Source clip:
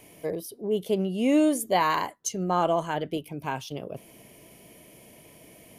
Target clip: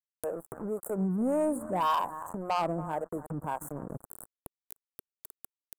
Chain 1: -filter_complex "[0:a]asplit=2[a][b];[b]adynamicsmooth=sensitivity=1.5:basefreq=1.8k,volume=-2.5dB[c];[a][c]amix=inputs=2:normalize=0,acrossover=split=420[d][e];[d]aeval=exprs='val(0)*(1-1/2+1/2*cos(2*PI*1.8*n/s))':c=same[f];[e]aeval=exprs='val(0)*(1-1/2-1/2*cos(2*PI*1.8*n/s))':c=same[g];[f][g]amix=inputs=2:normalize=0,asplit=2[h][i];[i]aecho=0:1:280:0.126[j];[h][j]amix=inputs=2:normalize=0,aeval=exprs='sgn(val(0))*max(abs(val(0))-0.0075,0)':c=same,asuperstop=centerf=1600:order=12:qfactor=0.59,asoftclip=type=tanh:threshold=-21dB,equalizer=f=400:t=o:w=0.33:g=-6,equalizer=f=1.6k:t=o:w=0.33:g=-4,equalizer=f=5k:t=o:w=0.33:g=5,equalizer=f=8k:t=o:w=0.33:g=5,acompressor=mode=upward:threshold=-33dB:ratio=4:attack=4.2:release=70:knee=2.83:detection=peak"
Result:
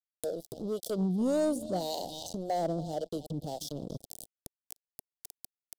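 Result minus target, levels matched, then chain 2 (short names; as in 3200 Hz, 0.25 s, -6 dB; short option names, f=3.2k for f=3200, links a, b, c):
2000 Hz band -7.0 dB
-filter_complex "[0:a]asplit=2[a][b];[b]adynamicsmooth=sensitivity=1.5:basefreq=1.8k,volume=-2.5dB[c];[a][c]amix=inputs=2:normalize=0,acrossover=split=420[d][e];[d]aeval=exprs='val(0)*(1-1/2+1/2*cos(2*PI*1.8*n/s))':c=same[f];[e]aeval=exprs='val(0)*(1-1/2-1/2*cos(2*PI*1.8*n/s))':c=same[g];[f][g]amix=inputs=2:normalize=0,asplit=2[h][i];[i]aecho=0:1:280:0.126[j];[h][j]amix=inputs=2:normalize=0,aeval=exprs='sgn(val(0))*max(abs(val(0))-0.0075,0)':c=same,asuperstop=centerf=3600:order=12:qfactor=0.59,asoftclip=type=tanh:threshold=-21dB,equalizer=f=400:t=o:w=0.33:g=-6,equalizer=f=1.6k:t=o:w=0.33:g=-4,equalizer=f=5k:t=o:w=0.33:g=5,equalizer=f=8k:t=o:w=0.33:g=5,acompressor=mode=upward:threshold=-33dB:ratio=4:attack=4.2:release=70:knee=2.83:detection=peak"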